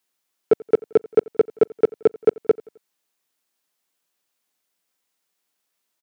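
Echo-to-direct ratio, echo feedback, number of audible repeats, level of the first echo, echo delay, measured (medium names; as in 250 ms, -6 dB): -22.5 dB, 46%, 2, -23.5 dB, 87 ms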